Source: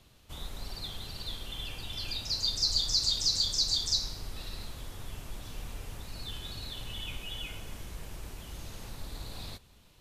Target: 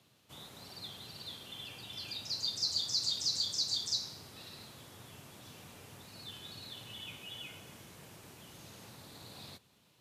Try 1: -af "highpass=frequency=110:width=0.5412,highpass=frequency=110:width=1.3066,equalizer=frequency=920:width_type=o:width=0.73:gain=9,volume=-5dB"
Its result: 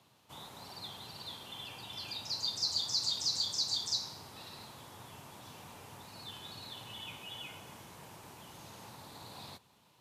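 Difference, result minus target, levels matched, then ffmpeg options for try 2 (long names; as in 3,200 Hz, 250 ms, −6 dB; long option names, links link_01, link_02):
1,000 Hz band +7.0 dB
-af "highpass=frequency=110:width=0.5412,highpass=frequency=110:width=1.3066,volume=-5dB"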